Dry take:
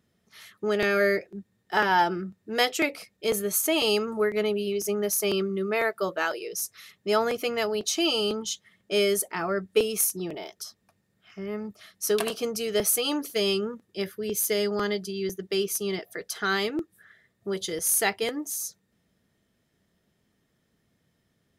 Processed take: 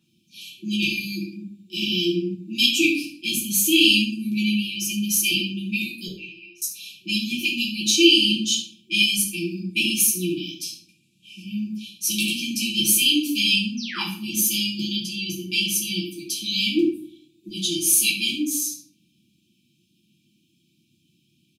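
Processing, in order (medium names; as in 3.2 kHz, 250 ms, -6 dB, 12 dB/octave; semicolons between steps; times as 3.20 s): 10.63–11.42 s: CVSD coder 64 kbps; high-pass 180 Hz 12 dB/octave; FFT band-reject 370–2300 Hz; 6.07–6.62 s: vowel filter a; peaking EQ 1.5 kHz +12 dB 1.9 oct; 13.77–14.02 s: painted sound fall 760–6400 Hz -39 dBFS; 16.67–17.48 s: comb 2.7 ms, depth 39%; delay 71 ms -14 dB; simulated room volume 56 m³, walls mixed, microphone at 1.3 m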